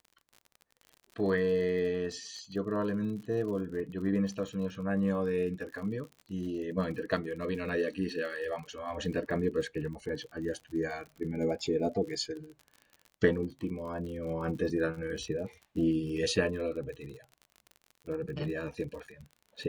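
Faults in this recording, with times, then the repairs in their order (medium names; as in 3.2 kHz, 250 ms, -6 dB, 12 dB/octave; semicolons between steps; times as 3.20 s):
crackle 42 per s -41 dBFS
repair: de-click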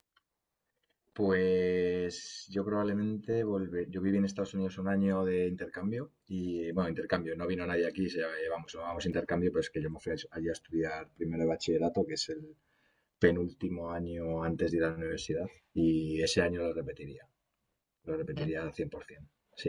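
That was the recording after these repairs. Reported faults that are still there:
nothing left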